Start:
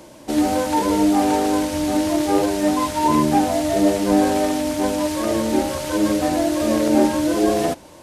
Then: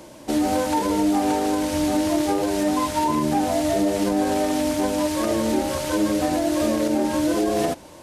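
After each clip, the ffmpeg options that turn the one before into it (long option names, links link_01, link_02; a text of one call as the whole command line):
ffmpeg -i in.wav -af "alimiter=limit=-12.5dB:level=0:latency=1:release=149" out.wav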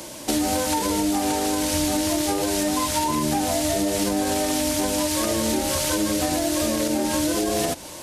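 ffmpeg -i in.wav -filter_complex "[0:a]highshelf=frequency=2500:gain=11.5,acrossover=split=130[link_01][link_02];[link_02]acompressor=threshold=-24dB:ratio=4[link_03];[link_01][link_03]amix=inputs=2:normalize=0,volume=3dB" out.wav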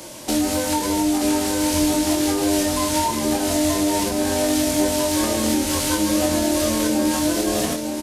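ffmpeg -i in.wav -filter_complex "[0:a]aeval=exprs='0.316*(cos(1*acos(clip(val(0)/0.316,-1,1)))-cos(1*PI/2))+0.01*(cos(3*acos(clip(val(0)/0.316,-1,1)))-cos(3*PI/2))+0.00355*(cos(7*acos(clip(val(0)/0.316,-1,1)))-cos(7*PI/2))':channel_layout=same,asplit=2[link_01][link_02];[link_02]adelay=23,volume=-3.5dB[link_03];[link_01][link_03]amix=inputs=2:normalize=0,asplit=2[link_04][link_05];[link_05]aecho=0:1:927:0.501[link_06];[link_04][link_06]amix=inputs=2:normalize=0" out.wav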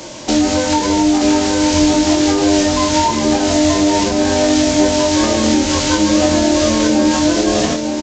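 ffmpeg -i in.wav -af "aresample=16000,aresample=44100,volume=7dB" out.wav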